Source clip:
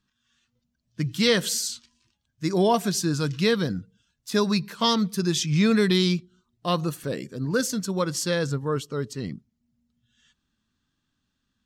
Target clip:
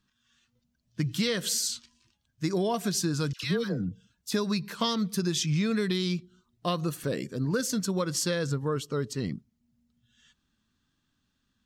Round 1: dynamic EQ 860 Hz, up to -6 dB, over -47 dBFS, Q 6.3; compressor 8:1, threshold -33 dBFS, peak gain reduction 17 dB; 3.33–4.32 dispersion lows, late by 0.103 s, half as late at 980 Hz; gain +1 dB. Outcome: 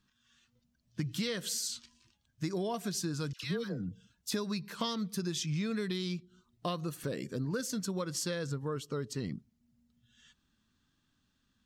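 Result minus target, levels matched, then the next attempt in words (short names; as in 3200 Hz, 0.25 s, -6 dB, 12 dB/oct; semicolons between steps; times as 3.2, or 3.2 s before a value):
compressor: peak gain reduction +7 dB
dynamic EQ 860 Hz, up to -6 dB, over -47 dBFS, Q 6.3; compressor 8:1, threshold -25 dBFS, peak gain reduction 10 dB; 3.33–4.32 dispersion lows, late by 0.103 s, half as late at 980 Hz; gain +1 dB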